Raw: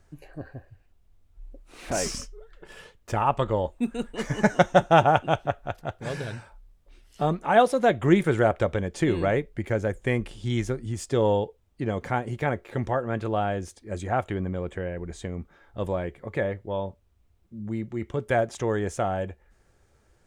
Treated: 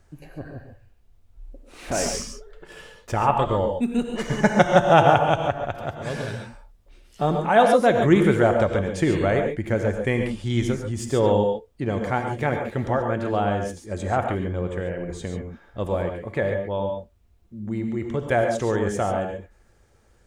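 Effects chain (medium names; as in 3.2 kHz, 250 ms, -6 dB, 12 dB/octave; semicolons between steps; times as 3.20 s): gated-style reverb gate 160 ms rising, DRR 4.5 dB; trim +2 dB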